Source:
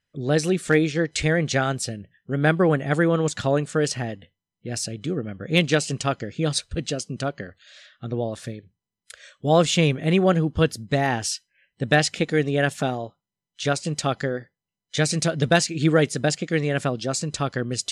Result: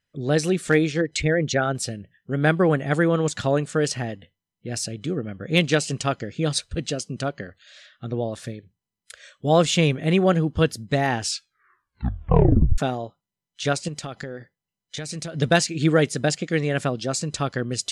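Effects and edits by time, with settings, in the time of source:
0:01.01–0:01.75: spectral envelope exaggerated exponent 1.5
0:11.20: tape stop 1.58 s
0:13.88–0:15.35: downward compressor, threshold −29 dBFS

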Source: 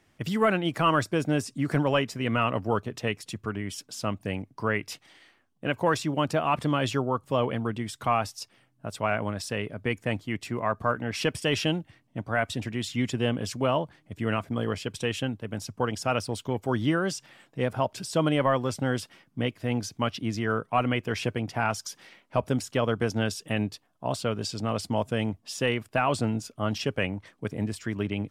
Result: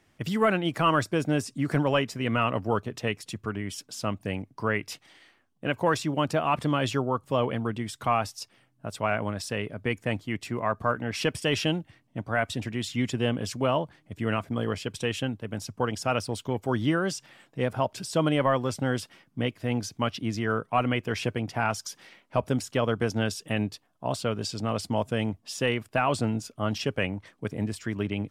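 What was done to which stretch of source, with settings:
nothing changes

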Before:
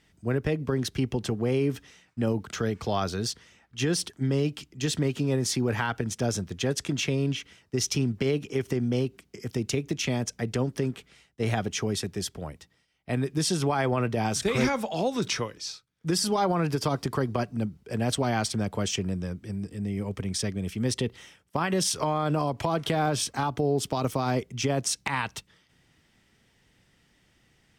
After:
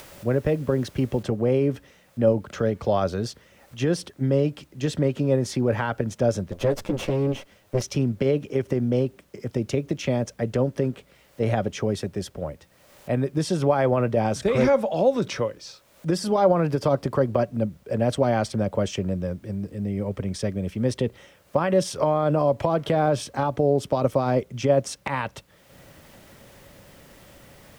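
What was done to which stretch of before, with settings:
0:01.23: noise floor change −50 dB −61 dB
0:06.51–0:07.82: lower of the sound and its delayed copy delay 9.7 ms
whole clip: high-shelf EQ 2,500 Hz −11 dB; upward compression, threshold −41 dBFS; parametric band 560 Hz +12 dB 0.27 octaves; level +3 dB

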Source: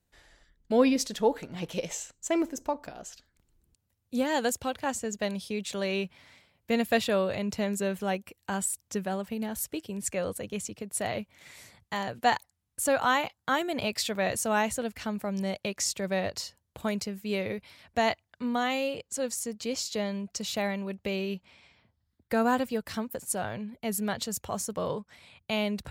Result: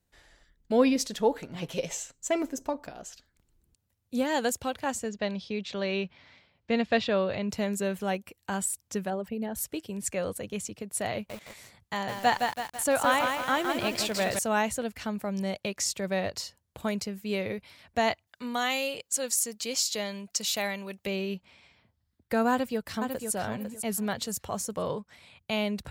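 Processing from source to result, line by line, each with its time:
0:01.54–0:02.80: comb filter 7.4 ms, depth 44%
0:05.09–0:07.49: low-pass filter 5,200 Hz 24 dB per octave
0:09.10–0:09.57: spectral envelope exaggerated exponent 1.5
0:11.13–0:14.39: feedback echo at a low word length 164 ms, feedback 55%, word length 7 bits, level −4 dB
0:18.27–0:21.07: spectral tilt +2.5 dB per octave
0:22.51–0:23.32: delay throw 500 ms, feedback 25%, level −6.5 dB

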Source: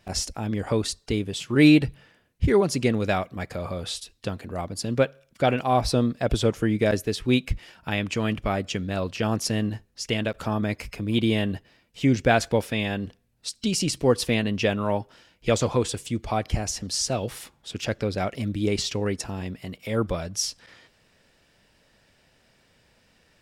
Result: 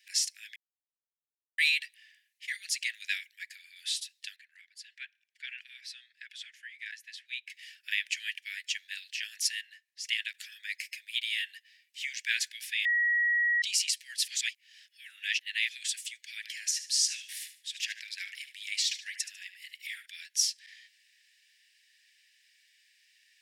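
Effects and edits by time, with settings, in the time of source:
0:00.56–0:01.58: silence
0:03.03–0:03.76: multiband upward and downward expander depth 40%
0:04.36–0:07.50: low-pass filter 1,100 Hz 6 dB per octave
0:09.61–0:10.04: high-shelf EQ 2,800 Hz −8.5 dB
0:12.85–0:13.62: beep over 1,910 Hz −23.5 dBFS
0:14.28–0:15.69: reverse
0:16.35–0:20.06: repeating echo 74 ms, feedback 30%, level −11.5 dB
whole clip: Butterworth high-pass 1,700 Hz 96 dB per octave

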